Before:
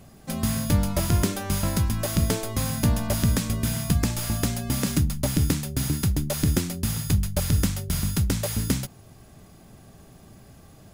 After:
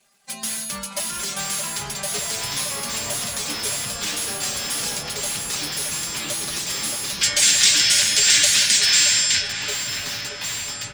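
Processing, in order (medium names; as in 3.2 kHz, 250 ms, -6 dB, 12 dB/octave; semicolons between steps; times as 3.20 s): expander on every frequency bin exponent 1.5; frequency weighting ITU-R 468; crackle 300 per s -54 dBFS; comb 5 ms, depth 98%; peak limiter -11.5 dBFS, peak gain reduction 9.5 dB; ever faster or slower copies 774 ms, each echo -6 st, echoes 2; in parallel at -5 dB: integer overflow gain 23.5 dB; on the sum: time-frequency box 7.22–9.48 s, 1.4–8.9 kHz +12 dB; on a send: filtered feedback delay 622 ms, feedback 76%, low-pass 1.9 kHz, level -5 dB; on the sum: trim -3 dB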